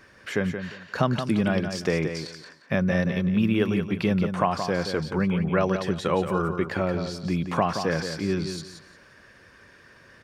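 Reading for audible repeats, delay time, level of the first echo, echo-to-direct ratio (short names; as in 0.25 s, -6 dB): 3, 0.175 s, -8.0 dB, -8.0 dB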